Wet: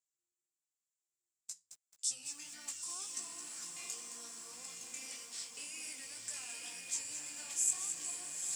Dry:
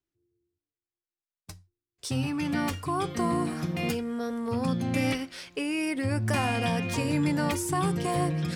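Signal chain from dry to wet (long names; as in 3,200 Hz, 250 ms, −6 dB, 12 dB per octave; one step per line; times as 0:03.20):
downward compressor, threshold −30 dBFS, peak gain reduction 8 dB
chorus effect 1.9 Hz, delay 16.5 ms, depth 7 ms
resonant band-pass 7,400 Hz, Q 6.5
feedback delay with all-pass diffusion 919 ms, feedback 56%, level −4 dB
feedback echo at a low word length 217 ms, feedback 35%, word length 12 bits, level −8.5 dB
level +16 dB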